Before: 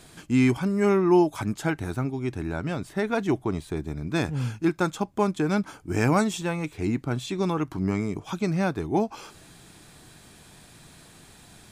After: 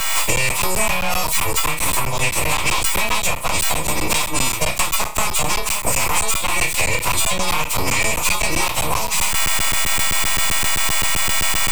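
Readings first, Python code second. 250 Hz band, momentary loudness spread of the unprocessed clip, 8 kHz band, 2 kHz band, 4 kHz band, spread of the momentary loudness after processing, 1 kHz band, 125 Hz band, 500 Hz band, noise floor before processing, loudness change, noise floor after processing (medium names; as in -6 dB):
-7.0 dB, 9 LU, +25.5 dB, +15.0 dB, +21.0 dB, 3 LU, +10.0 dB, 0.0 dB, 0.0 dB, -52 dBFS, +8.0 dB, -23 dBFS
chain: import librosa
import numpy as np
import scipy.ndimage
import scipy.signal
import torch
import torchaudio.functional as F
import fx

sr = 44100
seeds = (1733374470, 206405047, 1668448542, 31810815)

y = fx.freq_snap(x, sr, grid_st=3)
y = fx.recorder_agc(y, sr, target_db=-11.5, rise_db_per_s=67.0, max_gain_db=30)
y = scipy.signal.sosfilt(scipy.signal.butter(2, 63.0, 'highpass', fs=sr, output='sos'), y)
y = fx.high_shelf(y, sr, hz=10000.0, db=11.5)
y = fx.room_flutter(y, sr, wall_m=5.4, rt60_s=0.32)
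y = np.abs(y)
y = fx.graphic_eq_31(y, sr, hz=(250, 400, 1000, 1600, 2500, 8000), db=(-12, -9, 12, -8, 10, 8))
y = fx.buffer_crackle(y, sr, first_s=0.36, period_s=0.13, block=512, kind='zero')
y = fx.band_squash(y, sr, depth_pct=100)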